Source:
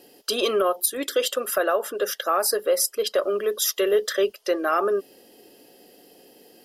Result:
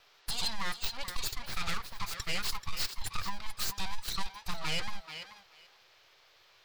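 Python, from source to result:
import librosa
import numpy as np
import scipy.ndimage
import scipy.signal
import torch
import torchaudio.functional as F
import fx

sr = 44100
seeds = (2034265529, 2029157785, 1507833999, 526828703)

p1 = fx.bin_expand(x, sr, power=1.5)
p2 = fx.low_shelf(p1, sr, hz=190.0, db=7.5)
p3 = np.abs(p2)
p4 = fx.graphic_eq_15(p3, sr, hz=(100, 250, 630, 4000), db=(5, -10, -7, 11))
p5 = fx.rider(p4, sr, range_db=10, speed_s=0.5)
p6 = p4 + (p5 * librosa.db_to_amplitude(-2.5))
p7 = fx.dmg_noise_band(p6, sr, seeds[0], low_hz=390.0, high_hz=4300.0, level_db=-55.0)
p8 = fx.formant_shift(p7, sr, semitones=2)
p9 = p8 + fx.echo_thinned(p8, sr, ms=434, feedback_pct=16, hz=420.0, wet_db=-12, dry=0)
p10 = 10.0 ** (-15.5 / 20.0) * np.tanh(p9 / 10.0 ** (-15.5 / 20.0))
y = p10 * librosa.db_to_amplitude(-8.5)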